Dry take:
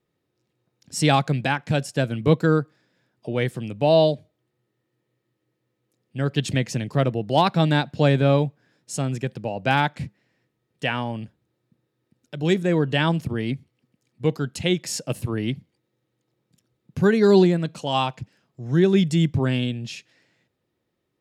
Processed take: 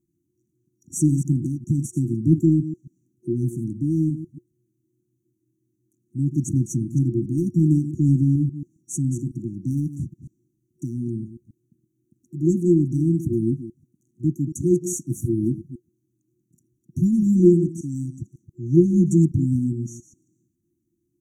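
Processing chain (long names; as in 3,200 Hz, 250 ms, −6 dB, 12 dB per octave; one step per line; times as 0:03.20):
delay that plays each chunk backwards 137 ms, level −12 dB
in parallel at −11.5 dB: hard clipping −16 dBFS, distortion −10 dB
on the sum: hollow resonant body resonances 360/820/1,900/3,700 Hz, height 8 dB
brick-wall band-stop 360–5,700 Hz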